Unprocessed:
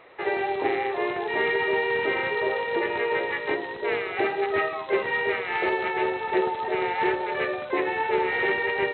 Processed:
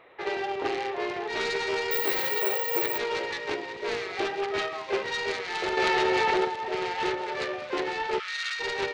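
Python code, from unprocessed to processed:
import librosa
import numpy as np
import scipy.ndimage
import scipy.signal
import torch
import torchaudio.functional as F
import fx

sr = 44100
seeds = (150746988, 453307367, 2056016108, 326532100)

y = fx.self_delay(x, sr, depth_ms=0.24)
y = fx.ellip_highpass(y, sr, hz=1200.0, order=4, stop_db=40, at=(8.18, 8.59), fade=0.02)
y = fx.echo_wet_highpass(y, sr, ms=865, feedback_pct=53, hz=2000.0, wet_db=-10)
y = fx.resample_bad(y, sr, factor=2, down='filtered', up='zero_stuff', at=(1.91, 2.98))
y = fx.env_flatten(y, sr, amount_pct=100, at=(5.77, 6.45))
y = y * 10.0 ** (-3.5 / 20.0)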